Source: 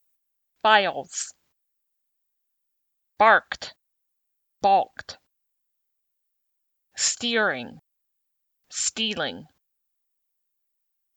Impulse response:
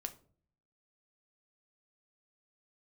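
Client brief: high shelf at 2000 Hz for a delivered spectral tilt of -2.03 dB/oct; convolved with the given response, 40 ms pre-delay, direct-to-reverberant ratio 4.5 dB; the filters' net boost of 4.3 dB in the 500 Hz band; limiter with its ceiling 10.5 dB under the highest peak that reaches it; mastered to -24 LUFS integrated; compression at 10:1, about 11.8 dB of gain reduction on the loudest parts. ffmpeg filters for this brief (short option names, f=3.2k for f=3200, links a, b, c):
-filter_complex "[0:a]equalizer=f=500:t=o:g=6.5,highshelf=f=2k:g=-6.5,acompressor=threshold=-23dB:ratio=10,alimiter=limit=-21.5dB:level=0:latency=1,asplit=2[a][b];[1:a]atrim=start_sample=2205,adelay=40[c];[b][c]afir=irnorm=-1:irlink=0,volume=-2.5dB[d];[a][d]amix=inputs=2:normalize=0,volume=8.5dB"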